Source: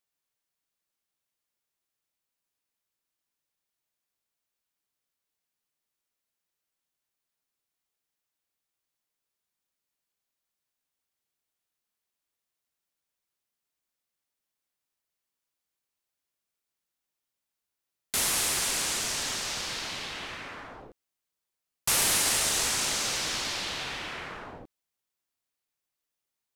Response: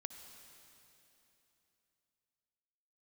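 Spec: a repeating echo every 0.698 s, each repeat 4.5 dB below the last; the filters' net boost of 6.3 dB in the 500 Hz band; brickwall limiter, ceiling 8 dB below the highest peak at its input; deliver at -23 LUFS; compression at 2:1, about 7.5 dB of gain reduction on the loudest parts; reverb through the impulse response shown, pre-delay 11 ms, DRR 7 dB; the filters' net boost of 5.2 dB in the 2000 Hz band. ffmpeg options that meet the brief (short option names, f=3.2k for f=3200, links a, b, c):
-filter_complex "[0:a]equalizer=f=500:t=o:g=7.5,equalizer=f=2k:t=o:g=6,acompressor=threshold=-34dB:ratio=2,alimiter=limit=-23.5dB:level=0:latency=1,aecho=1:1:698|1396|2094|2792|3490|4188|4886|5584|6282:0.596|0.357|0.214|0.129|0.0772|0.0463|0.0278|0.0167|0.01,asplit=2[a][b];[1:a]atrim=start_sample=2205,adelay=11[c];[b][c]afir=irnorm=-1:irlink=0,volume=-3.5dB[d];[a][d]amix=inputs=2:normalize=0,volume=8.5dB"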